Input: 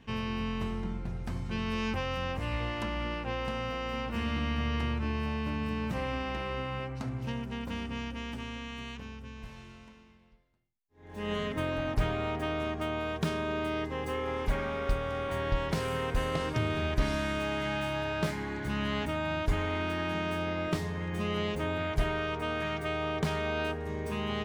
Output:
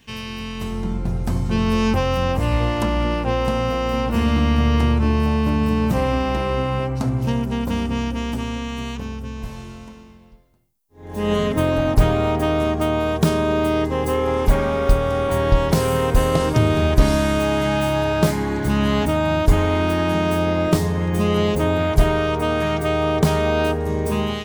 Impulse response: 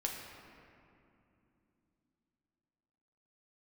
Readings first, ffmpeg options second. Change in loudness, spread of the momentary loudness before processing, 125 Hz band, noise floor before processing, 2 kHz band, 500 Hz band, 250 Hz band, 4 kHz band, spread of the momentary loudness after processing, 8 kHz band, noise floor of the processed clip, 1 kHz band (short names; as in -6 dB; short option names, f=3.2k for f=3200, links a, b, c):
+13.0 dB, 6 LU, +14.0 dB, -52 dBFS, +7.5 dB, +14.0 dB, +14.0 dB, +9.5 dB, 8 LU, +15.5 dB, -39 dBFS, +11.5 dB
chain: -filter_complex "[0:a]acrossover=split=1300[a][b];[a]dynaudnorm=f=550:g=3:m=14.5dB[c];[b]crystalizer=i=5.5:c=0[d];[c][d]amix=inputs=2:normalize=0"